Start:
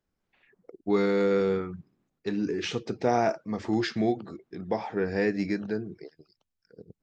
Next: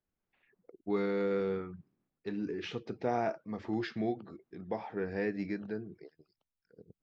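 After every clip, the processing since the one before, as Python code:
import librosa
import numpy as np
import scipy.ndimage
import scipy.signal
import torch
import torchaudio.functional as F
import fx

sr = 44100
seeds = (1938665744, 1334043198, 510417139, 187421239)

y = scipy.signal.sosfilt(scipy.signal.butter(2, 3800.0, 'lowpass', fs=sr, output='sos'), x)
y = y * 10.0 ** (-7.5 / 20.0)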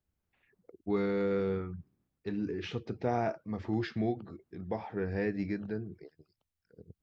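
y = fx.peak_eq(x, sr, hz=72.0, db=13.5, octaves=1.5)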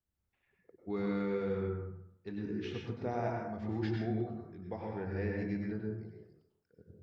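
y = fx.rev_plate(x, sr, seeds[0], rt60_s=0.79, hf_ratio=0.45, predelay_ms=85, drr_db=-0.5)
y = y * 10.0 ** (-6.5 / 20.0)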